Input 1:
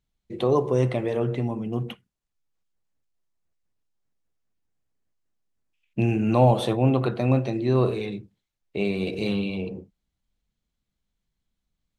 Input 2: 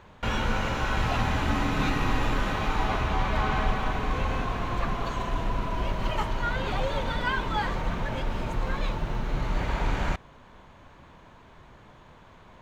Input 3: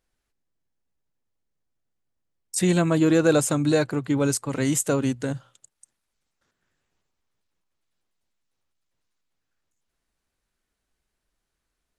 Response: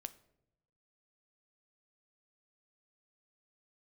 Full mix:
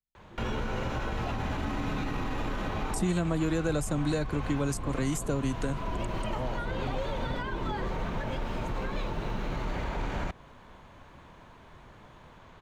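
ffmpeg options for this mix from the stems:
-filter_complex "[0:a]volume=-17.5dB[link_01];[1:a]alimiter=limit=-19.5dB:level=0:latency=1:release=40,adelay=150,volume=-0.5dB[link_02];[2:a]adelay=400,volume=2.5dB[link_03];[link_01][link_02][link_03]amix=inputs=3:normalize=0,acrossover=split=180|730[link_04][link_05][link_06];[link_04]acompressor=threshold=-31dB:ratio=4[link_07];[link_05]acompressor=threshold=-33dB:ratio=4[link_08];[link_06]acompressor=threshold=-39dB:ratio=4[link_09];[link_07][link_08][link_09]amix=inputs=3:normalize=0"

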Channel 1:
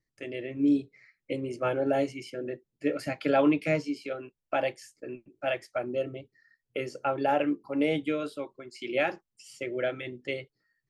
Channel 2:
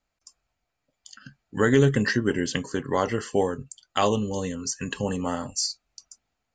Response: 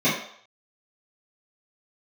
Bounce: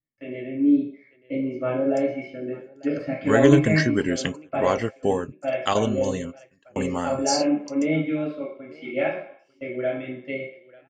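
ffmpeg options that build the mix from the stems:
-filter_complex "[0:a]lowpass=3100,agate=range=-10dB:threshold=-56dB:ratio=16:detection=peak,volume=-6dB,asplit=4[link_01][link_02][link_03][link_04];[link_02]volume=-11dB[link_05];[link_03]volume=-15.5dB[link_06];[1:a]adelay=1700,volume=0.5dB[link_07];[link_04]apad=whole_len=363675[link_08];[link_07][link_08]sidechaingate=range=-33dB:threshold=-57dB:ratio=16:detection=peak[link_09];[2:a]atrim=start_sample=2205[link_10];[link_05][link_10]afir=irnorm=-1:irlink=0[link_11];[link_06]aecho=0:1:901|1802|2703|3604:1|0.22|0.0484|0.0106[link_12];[link_01][link_09][link_11][link_12]amix=inputs=4:normalize=0"

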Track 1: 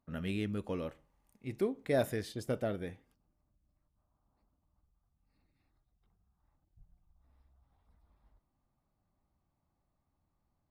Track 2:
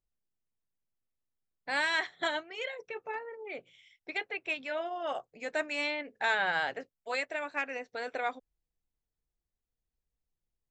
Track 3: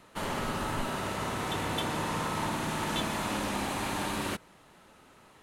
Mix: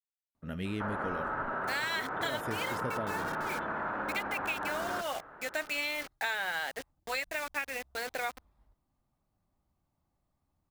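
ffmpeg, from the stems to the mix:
ffmpeg -i stem1.wav -i stem2.wav -i stem3.wav -filter_complex "[0:a]adelay=350,volume=1dB[link_01];[1:a]tiltshelf=frequency=1300:gain=-4,acrusher=bits=6:mix=0:aa=0.000001,volume=1.5dB,asplit=2[link_02][link_03];[2:a]equalizer=frequency=580:width_type=o:width=1.9:gain=9.5,alimiter=level_in=2.5dB:limit=-24dB:level=0:latency=1,volume=-2.5dB,lowpass=frequency=1500:width_type=q:width=5.7,adelay=650,volume=-3.5dB[link_04];[link_03]apad=whole_len=487732[link_05];[link_01][link_05]sidechaincompress=threshold=-32dB:ratio=8:attack=16:release=149[link_06];[link_06][link_02][link_04]amix=inputs=3:normalize=0,acompressor=threshold=-30dB:ratio=6" out.wav

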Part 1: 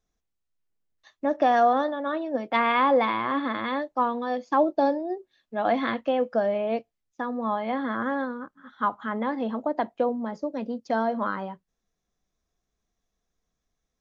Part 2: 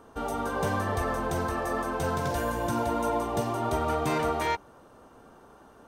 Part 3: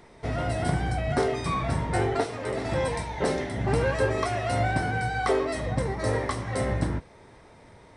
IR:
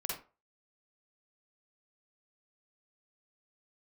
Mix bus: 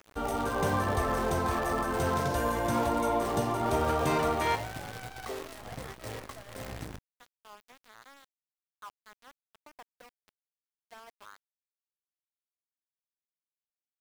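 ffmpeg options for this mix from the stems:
-filter_complex "[0:a]highpass=820,volume=-19.5dB[link_01];[1:a]volume=-2.5dB,asplit=2[link_02][link_03];[link_03]volume=-9dB[link_04];[2:a]acrusher=bits=5:dc=4:mix=0:aa=0.000001,volume=-15dB[link_05];[3:a]atrim=start_sample=2205[link_06];[link_04][link_06]afir=irnorm=-1:irlink=0[link_07];[link_01][link_02][link_05][link_07]amix=inputs=4:normalize=0,aeval=exprs='val(0)*gte(abs(val(0)),0.00473)':channel_layout=same"

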